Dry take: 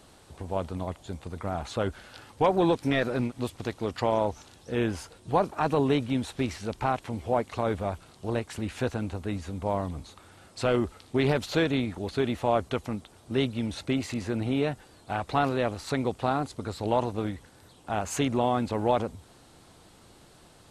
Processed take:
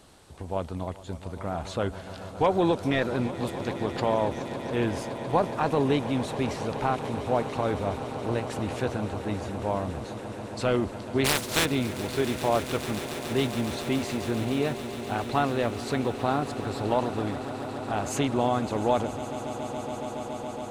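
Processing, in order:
0:11.24–0:11.64: compressing power law on the bin magnitudes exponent 0.29
echo that builds up and dies away 140 ms, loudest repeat 8, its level −17 dB

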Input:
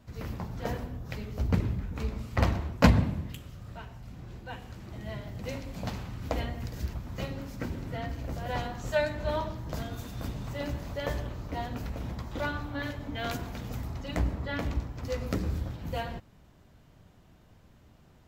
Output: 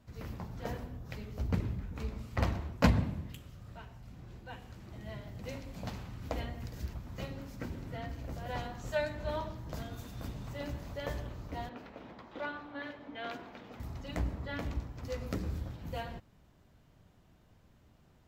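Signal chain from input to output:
0:11.69–0:13.80: three-way crossover with the lows and the highs turned down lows −21 dB, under 220 Hz, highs −19 dB, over 4,100 Hz
level −5.5 dB

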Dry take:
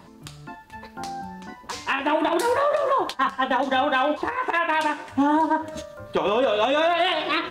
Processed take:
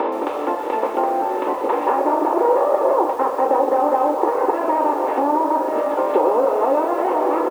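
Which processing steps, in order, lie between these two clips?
compressor on every frequency bin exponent 0.4
parametric band 1,600 Hz −8.5 dB 0.54 octaves
repeating echo 674 ms, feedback 28%, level −14.5 dB
treble cut that deepens with the level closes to 1,400 Hz, closed at −15.5 dBFS
reverb reduction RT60 0.55 s
downward compressor 2.5 to 1, threshold −36 dBFS, peak gain reduction 15 dB
high-pass filter 430 Hz 24 dB per octave
spectral tilt −4 dB per octave
convolution reverb RT60 0.40 s, pre-delay 3 ms, DRR 4 dB
feedback echo at a low word length 121 ms, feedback 55%, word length 7 bits, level −14 dB
level +8 dB

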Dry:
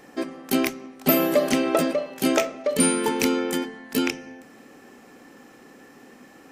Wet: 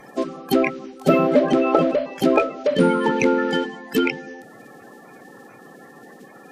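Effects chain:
spectral magnitudes quantised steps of 30 dB
treble cut that deepens with the level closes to 2,400 Hz, closed at −19 dBFS
level +5 dB

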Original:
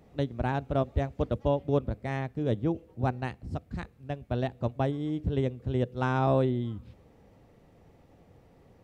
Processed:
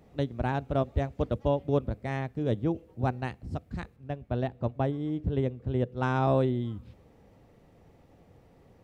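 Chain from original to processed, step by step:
0:03.96–0:06.03: high-shelf EQ 3,700 Hz −9.5 dB

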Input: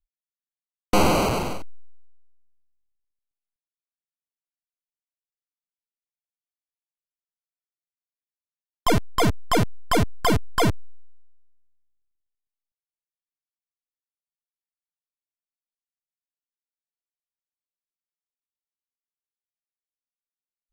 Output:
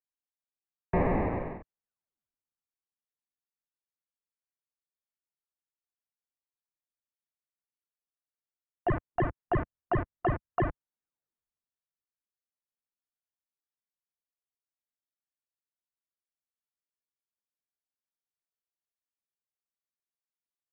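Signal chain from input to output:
single-sideband voice off tune −340 Hz 300–2,200 Hz
level −5 dB

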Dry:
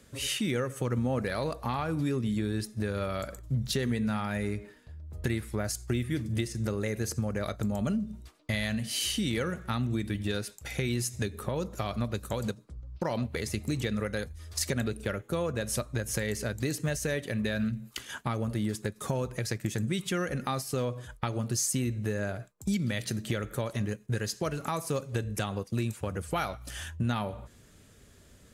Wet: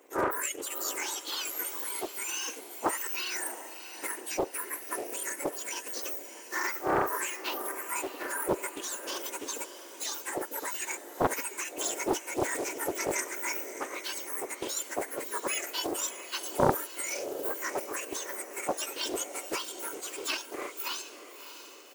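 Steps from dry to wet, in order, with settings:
frequency axis turned over on the octave scale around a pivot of 1,900 Hz
high-pass filter 550 Hz 6 dB per octave
in parallel at −9.5 dB: dead-zone distortion −54 dBFS
on the sum: tempo change 1.3×
feedback delay with all-pass diffusion 650 ms, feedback 48%, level −11 dB
highs frequency-modulated by the lows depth 0.78 ms
level +2.5 dB

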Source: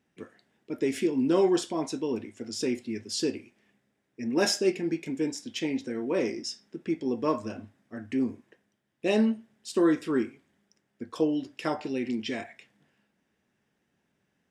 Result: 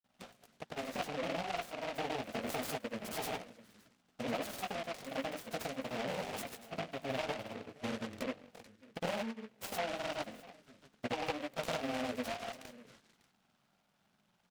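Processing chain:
lower of the sound and its delayed copy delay 1.4 ms
high-pass filter 210 Hz 12 dB per octave
high-shelf EQ 3,600 Hz −6.5 dB
downward compressor 16 to 1, threshold −43 dBFS, peak gain reduction 21.5 dB
chorus effect 0.27 Hz, delay 16 ms, depth 7.2 ms
single-tap delay 617 ms −18.5 dB
phaser swept by the level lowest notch 410 Hz, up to 3,600 Hz, full sweep at −53 dBFS
granular cloud
short delay modulated by noise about 1,700 Hz, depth 0.13 ms
level +13 dB

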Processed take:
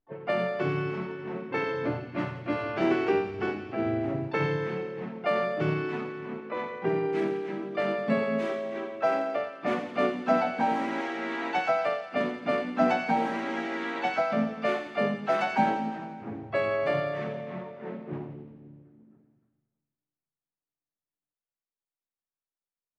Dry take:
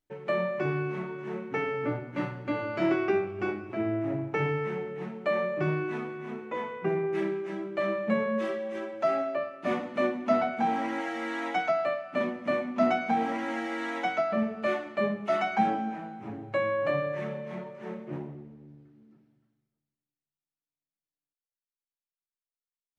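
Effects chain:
pitch-shifted copies added −5 semitones −12 dB, +3 semitones −9 dB, +12 semitones −18 dB
low-pass that shuts in the quiet parts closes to 1,400 Hz, open at −23 dBFS
delay with a high-pass on its return 86 ms, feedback 67%, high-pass 2,600 Hz, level −8 dB

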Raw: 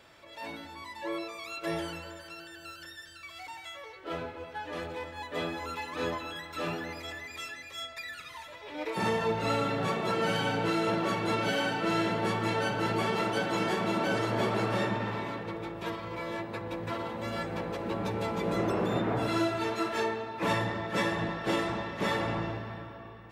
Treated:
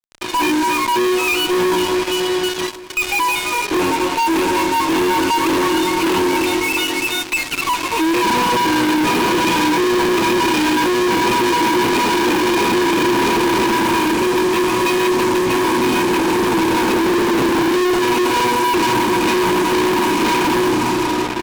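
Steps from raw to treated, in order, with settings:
in parallel at +1.5 dB: downward compressor, threshold −41 dBFS, peak gain reduction 16 dB
on the sum: dead-zone distortion −58.5 dBFS
formant filter u
fuzz pedal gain 62 dB, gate −57 dBFS
on a send: single-tap delay 918 ms −16.5 dB
on the sum: wrong playback speed 44.1 kHz file played as 48 kHz
level −1.5 dB

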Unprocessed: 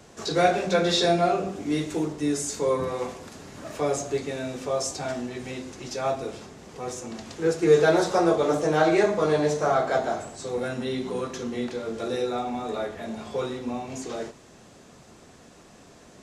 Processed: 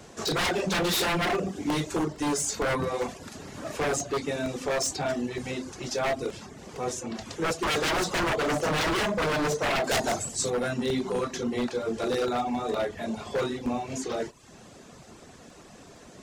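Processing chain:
reverb reduction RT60 0.56 s
wave folding −24 dBFS
0:09.84–0:10.50: bass and treble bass +4 dB, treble +12 dB
regular buffer underruns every 0.46 s, samples 64, repeat, from 0:00.78
level +3 dB

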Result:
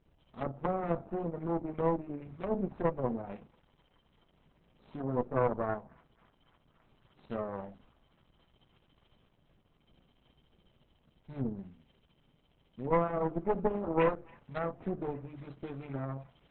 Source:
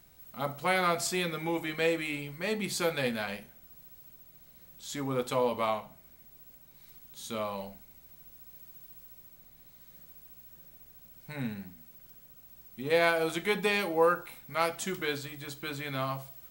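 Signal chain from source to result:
running median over 25 samples
treble cut that deepens with the level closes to 660 Hz, closed at −31.5 dBFS
harmonic generator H 2 −26 dB, 4 −7 dB, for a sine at −17.5 dBFS
on a send: delay with a high-pass on its return 276 ms, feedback 81%, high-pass 1,900 Hz, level −20 dB
on the sum: Opus 8 kbit/s 48,000 Hz

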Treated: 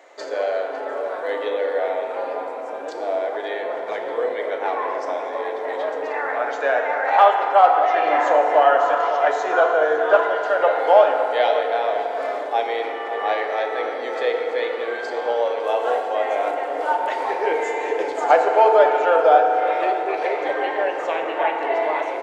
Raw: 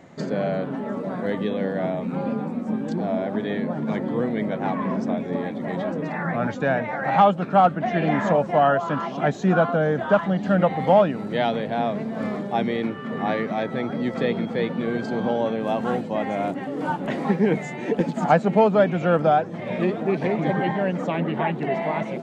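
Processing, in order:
inverse Chebyshev high-pass filter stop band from 220 Hz, stop band 40 dB
hard clipping −6 dBFS, distortion −61 dB
slap from a distant wall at 95 metres, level −10 dB
feedback delay network reverb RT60 3.4 s, high-frequency decay 0.45×, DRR 2 dB
level +2.5 dB

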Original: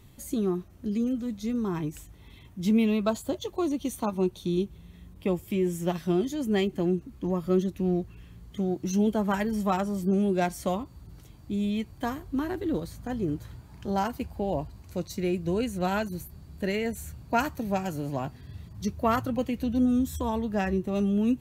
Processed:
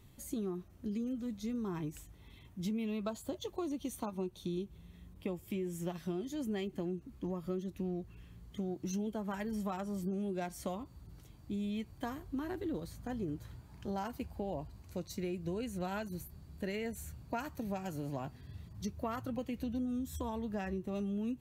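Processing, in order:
downward compressor, threshold −28 dBFS, peak gain reduction 9 dB
level −6 dB

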